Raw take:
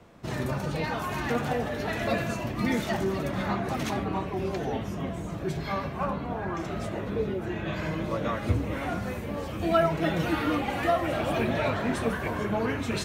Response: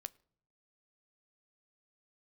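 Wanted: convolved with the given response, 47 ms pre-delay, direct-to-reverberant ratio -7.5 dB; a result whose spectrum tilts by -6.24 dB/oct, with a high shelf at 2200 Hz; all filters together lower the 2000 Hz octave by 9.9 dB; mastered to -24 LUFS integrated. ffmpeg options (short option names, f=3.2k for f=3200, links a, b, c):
-filter_complex "[0:a]equalizer=f=2k:t=o:g=-8.5,highshelf=f=2.2k:g=-8.5,asplit=2[a][b];[1:a]atrim=start_sample=2205,adelay=47[c];[b][c]afir=irnorm=-1:irlink=0,volume=12dB[d];[a][d]amix=inputs=2:normalize=0,volume=-1.5dB"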